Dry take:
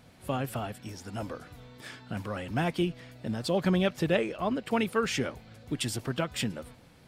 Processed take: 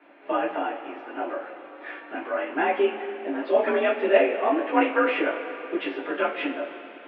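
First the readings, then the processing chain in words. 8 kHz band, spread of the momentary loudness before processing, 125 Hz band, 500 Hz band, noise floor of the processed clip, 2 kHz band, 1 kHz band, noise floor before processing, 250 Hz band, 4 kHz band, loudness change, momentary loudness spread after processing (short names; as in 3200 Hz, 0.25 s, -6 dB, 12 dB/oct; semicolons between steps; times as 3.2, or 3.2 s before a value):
under -35 dB, 17 LU, under -25 dB, +8.5 dB, -45 dBFS, +8.5 dB, +9.5 dB, -56 dBFS, +2.0 dB, -2.5 dB, +6.0 dB, 15 LU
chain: two-slope reverb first 0.26 s, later 3.5 s, from -19 dB, DRR -8 dB; mistuned SSB +50 Hz 290–2600 Hz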